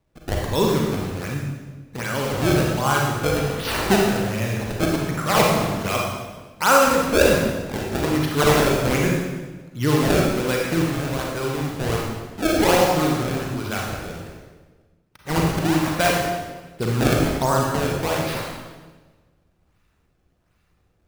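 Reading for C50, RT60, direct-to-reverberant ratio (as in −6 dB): 0.0 dB, 1.3 s, −2.0 dB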